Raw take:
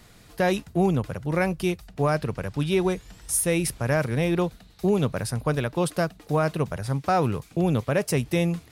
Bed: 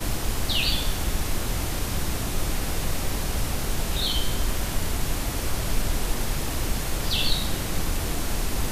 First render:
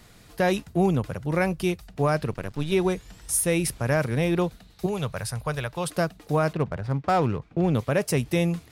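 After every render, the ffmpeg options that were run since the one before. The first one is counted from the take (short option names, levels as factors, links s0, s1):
-filter_complex "[0:a]asettb=1/sr,asplit=3[s0][s1][s2];[s0]atrim=end=2.314[s3];[s1]atrim=start=2.31:end=2.72,asetpts=PTS-STARTPTS,afade=t=in:d=0.004:c=qsin,afade=t=out:st=0.406:d=0.004:c=qsin,aeval=exprs='if(lt(val(0),0),0.251*val(0),val(0))':c=same[s4];[s2]atrim=start=2.716[s5];[s3][s4]acrossfade=d=0.004:c1=hsin:c2=qsin[s6];[s6][s5]acrossfade=d=0.004:c1=qsin:c2=hsin,asettb=1/sr,asplit=3[s7][s8][s9];[s7]atrim=end=4.864[s10];[s8]atrim=start=4.86:end=5.88,asetpts=PTS-STARTPTS,afade=t=in:d=0.004:c=qsin,afade=t=out:st=1.016:d=0.004:c=qsin,equalizer=f=280:w=1.1:g=-13[s11];[s9]atrim=start=5.876[s12];[s10][s11]acrossfade=d=0.004:c1=hsin:c2=qsin[s13];[s13][s12]acrossfade=d=0.004:c1=qsin:c2=hsin,asettb=1/sr,asplit=3[s14][s15][s16];[s14]atrim=end=6.534[s17];[s15]atrim=start=6.53:end=7.75,asetpts=PTS-STARTPTS,afade=t=in:d=0.004:c=qsin,afade=t=out:st=1.216:d=0.004:c=qsin,adynamicsmooth=sensitivity=5.5:basefreq=1700[s18];[s16]atrim=start=7.746[s19];[s17][s18]acrossfade=d=0.004:c1=hsin:c2=qsin[s20];[s20][s19]acrossfade=d=0.004:c1=qsin:c2=hsin"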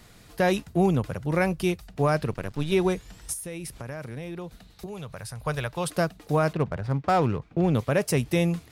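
-filter_complex "[0:a]asplit=3[s0][s1][s2];[s0]afade=t=out:st=3.32:d=0.02[s3];[s1]acompressor=threshold=0.0178:ratio=4:attack=3.2:release=140:knee=1:detection=peak,afade=t=in:st=3.32:d=0.02,afade=t=out:st=5.43:d=0.02[s4];[s2]afade=t=in:st=5.43:d=0.02[s5];[s3][s4][s5]amix=inputs=3:normalize=0"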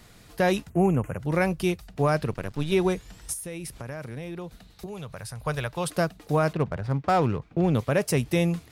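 -filter_complex "[0:a]asplit=3[s0][s1][s2];[s0]afade=t=out:st=0.69:d=0.02[s3];[s1]asuperstop=centerf=4300:order=8:qfactor=1.2,afade=t=in:st=0.69:d=0.02,afade=t=out:st=1.18:d=0.02[s4];[s2]afade=t=in:st=1.18:d=0.02[s5];[s3][s4][s5]amix=inputs=3:normalize=0"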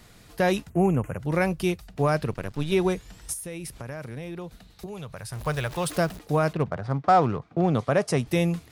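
-filter_complex "[0:a]asettb=1/sr,asplit=3[s0][s1][s2];[s0]atrim=end=5.324[s3];[s1]atrim=start=5.32:end=6.19,asetpts=PTS-STARTPTS,afade=t=in:d=0.004:c=qsin,afade=t=out:st=0.866:d=0.004:c=qsin,aeval=exprs='val(0)+0.5*0.0158*sgn(val(0))':c=same[s4];[s2]atrim=start=6.186[s5];[s3][s4]acrossfade=d=0.004:c1=hsin:c2=qsin[s6];[s6][s5]acrossfade=d=0.004:c1=qsin:c2=hsin,asettb=1/sr,asplit=3[s7][s8][s9];[s7]atrim=end=6.704[s10];[s8]atrim=start=6.7:end=8.27,asetpts=PTS-STARTPTS,afade=t=in:d=0.004:c=qsin,afade=t=out:st=1.566:d=0.004:c=qsin,highpass=100,equalizer=f=710:t=q:w=4:g=6,equalizer=f=1200:t=q:w=4:g=5,equalizer=f=2600:t=q:w=4:g=-4,equalizer=f=7500:t=q:w=4:g=-3,lowpass=f=9300:w=0.5412,lowpass=f=9300:w=1.3066[s11];[s9]atrim=start=8.266[s12];[s10][s11]acrossfade=d=0.004:c1=hsin:c2=qsin[s13];[s13][s12]acrossfade=d=0.004:c1=qsin:c2=hsin"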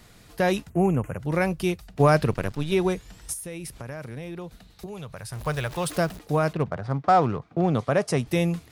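-filter_complex "[0:a]asplit=3[s0][s1][s2];[s0]atrim=end=2.002[s3];[s1]atrim=start=1.998:end=2.552,asetpts=PTS-STARTPTS,volume=1.78[s4];[s2]atrim=start=2.548[s5];[s3][s4]acrossfade=d=0.004:c1=hsin:c2=hsin[s6];[s6][s5]acrossfade=d=0.004:c1=hsin:c2=hsin"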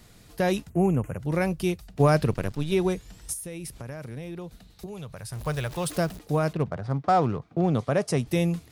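-af "equalizer=f=1400:t=o:w=2.7:g=-4"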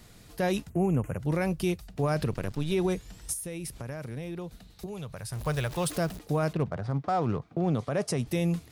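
-af "alimiter=limit=0.112:level=0:latency=1:release=48"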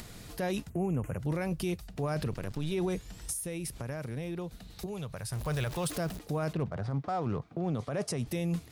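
-af "alimiter=level_in=1.06:limit=0.0631:level=0:latency=1:release=20,volume=0.944,acompressor=mode=upward:threshold=0.0112:ratio=2.5"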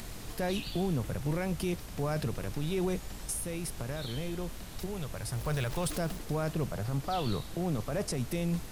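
-filter_complex "[1:a]volume=0.133[s0];[0:a][s0]amix=inputs=2:normalize=0"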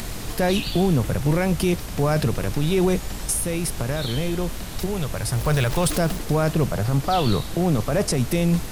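-af "volume=3.76"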